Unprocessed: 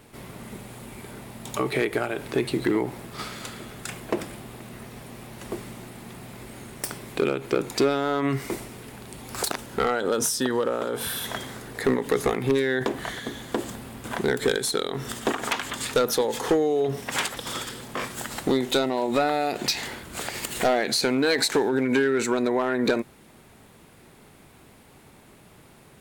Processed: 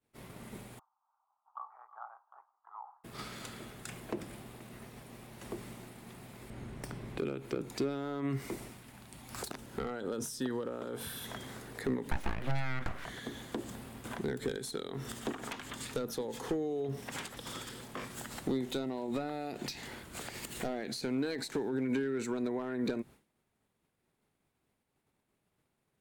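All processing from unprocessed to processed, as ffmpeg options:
-filter_complex "[0:a]asettb=1/sr,asplit=3[a][b][c];[a]atrim=end=0.794[d];[b]atrim=start=0.79:end=3.04,asetpts=PTS-STARTPTS,afade=t=in:d=0.004:c=qsin,afade=t=out:st=2.246:d=0.004:c=qsin,asuperpass=centerf=1000:order=8:qfactor=1.9,aecho=1:1:315:0.178,atrim=end_sample=99225[e];[c]atrim=start=3.036[f];[d][e]acrossfade=d=0.004:c1=hsin:c2=qsin[g];[g][f]acrossfade=d=0.004:c1=qsin:c2=hsin,asettb=1/sr,asplit=3[h][i][j];[h]atrim=end=6.504[k];[i]atrim=start=6.5:end=7.18,asetpts=PTS-STARTPTS,afade=t=in:d=0.004:c=qsin,afade=t=out:st=0.676:d=0.004:c=qsin,lowpass=f=2.8k:p=1,lowshelf=f=160:g=10.5[l];[j]atrim=start=7.176[m];[k][l]acrossfade=d=0.004:c1=hsin:c2=qsin[n];[n][m]acrossfade=d=0.004:c1=qsin:c2=hsin,asettb=1/sr,asplit=3[o][p][q];[o]atrim=end=8.714[r];[p]atrim=start=8.71:end=9.38,asetpts=PTS-STARTPTS,afade=t=in:d=0.004:c=qsin,afade=t=out:st=0.666:d=0.004:c=qsin,equalizer=f=420:t=o:w=0.56:g=-8,bandreject=f=470:w=15[s];[q]atrim=start=9.376[t];[r][s]acrossfade=d=0.004:c1=hsin:c2=qsin[u];[u][t]acrossfade=d=0.004:c1=qsin:c2=hsin,asettb=1/sr,asplit=3[v][w][x];[v]atrim=end=12.114[y];[w]atrim=start=12.11:end=13.05,asetpts=PTS-STARTPTS,afade=t=in:d=0.004:c=qsin,afade=t=out:st=0.936:d=0.004:c=qsin,highpass=87,aeval=exprs='abs(val(0))':c=same,equalizer=f=1.6k:w=0.62:g=11[z];[x]atrim=start=13.046[aa];[y][z]acrossfade=d=0.004:c1=hsin:c2=qsin[ab];[ab][aa]acrossfade=d=0.004:c1=qsin:c2=hsin,agate=range=-33dB:threshold=-38dB:ratio=3:detection=peak,acrossover=split=330[ac][ad];[ad]acompressor=threshold=-35dB:ratio=3[ae];[ac][ae]amix=inputs=2:normalize=0,volume=-7dB"

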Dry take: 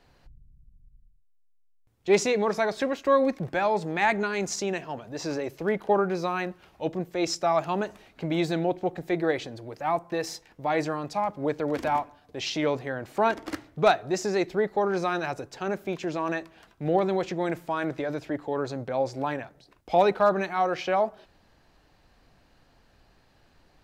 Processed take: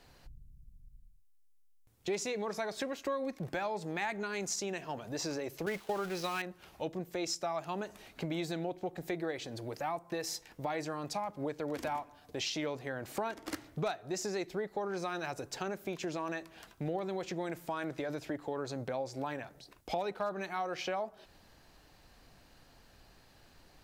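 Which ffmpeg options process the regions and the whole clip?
-filter_complex "[0:a]asettb=1/sr,asplit=3[a][b][c];[a]atrim=end=5.664[d];[b]atrim=start=5.66:end=6.42,asetpts=PTS-STARTPTS,afade=t=in:d=0.004:c=qsin,afade=t=out:st=0.756:d=0.004:c=qsin,aeval=exprs='val(0)+0.5*0.0188*sgn(val(0))':c=same,equalizer=f=3.1k:w=0.61:g=7.5,agate=range=-33dB:threshold=-26dB:ratio=3:release=100:detection=peak[e];[c]atrim=start=6.416[f];[d][e]acrossfade=d=0.004:c1=hsin:c2=qsin[g];[g][f]acrossfade=d=0.004:c1=qsin:c2=hsin,aemphasis=mode=production:type=cd,acompressor=threshold=-35dB:ratio=4"

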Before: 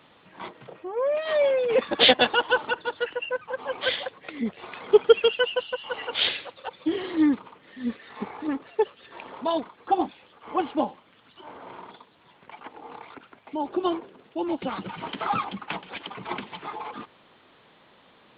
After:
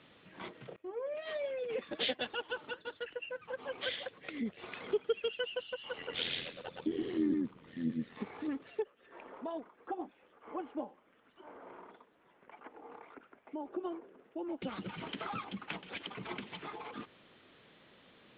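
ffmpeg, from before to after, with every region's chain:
-filter_complex "[0:a]asettb=1/sr,asplit=3[a][b][c];[a]atrim=end=0.764[d];[b]atrim=start=0.76:end=3.42,asetpts=PTS-STARTPTS,afade=t=in:d=0.004:c=qsin,afade=t=out:st=2.656:d=0.004:c=qsin,agate=range=-33dB:threshold=-44dB:ratio=3:release=100:detection=peak,flanger=delay=0.3:depth=6.9:regen=73:speed=1.3:shape=triangular[e];[c]atrim=start=3.416[f];[d][e]acrossfade=d=0.004:c1=hsin:c2=qsin[g];[g][f]acrossfade=d=0.004:c1=qsin:c2=hsin,asettb=1/sr,asplit=3[h][i][j];[h]atrim=end=5.984[k];[i]atrim=start=5.98:end=8.18,asetpts=PTS-STARTPTS,afade=t=in:d=0.004:c=qsin,afade=t=out:st=2.196:d=0.004:c=qsin,equalizer=f=160:w=0.74:g=12,tremolo=f=84:d=0.71,aecho=1:1:116:0.708,atrim=end_sample=97020[l];[j]atrim=start=8.176[m];[k][l]acrossfade=d=0.004:c1=hsin:c2=qsin[n];[n][m]acrossfade=d=0.004:c1=qsin:c2=hsin,asettb=1/sr,asplit=3[o][p][q];[o]atrim=end=8.824[r];[p]atrim=start=8.82:end=14.62,asetpts=PTS-STARTPTS,afade=t=in:d=0.004:c=qsin,afade=t=out:st=5.796:d=0.004:c=qsin,lowpass=1.5k,equalizer=f=110:w=0.72:g=-14.5[s];[q]atrim=start=14.616[t];[r][s]acrossfade=d=0.004:c1=hsin:c2=qsin[u];[u][t]acrossfade=d=0.004:c1=qsin:c2=hsin,lowpass=4.3k,acompressor=threshold=-35dB:ratio=2,equalizer=f=920:t=o:w=1:g=-8,volume=-2.5dB"

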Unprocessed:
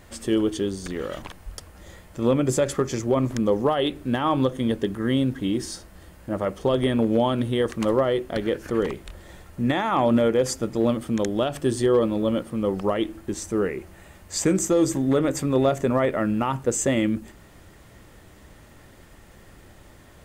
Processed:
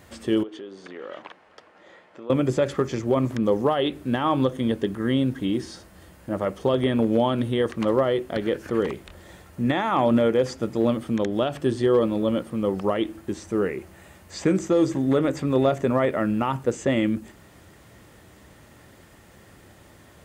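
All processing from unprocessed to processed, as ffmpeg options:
-filter_complex "[0:a]asettb=1/sr,asplit=3[a][b][c];[a]atrim=end=0.434[d];[b]atrim=start=0.43:end=2.3,asetpts=PTS-STARTPTS,afade=t=in:d=0.004:c=qsin,afade=t=out:st=1.866:d=0.004:c=qsin,acompressor=threshold=-29dB:ratio=12:attack=3.2:release=140:knee=1:detection=peak,highpass=380,lowpass=2.8k[e];[c]atrim=start=2.296[f];[d][e]acrossfade=d=0.004:c1=hsin:c2=qsin[g];[g][f]acrossfade=d=0.004:c1=qsin:c2=hsin,acrossover=split=4600[h][i];[i]acompressor=threshold=-50dB:ratio=4:attack=1:release=60[j];[h][j]amix=inputs=2:normalize=0,highpass=73"

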